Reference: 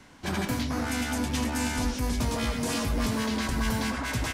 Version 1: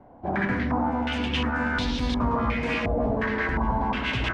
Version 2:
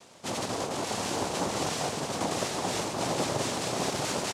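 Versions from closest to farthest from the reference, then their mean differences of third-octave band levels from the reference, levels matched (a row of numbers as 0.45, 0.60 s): 2, 1; 5.0, 10.0 dB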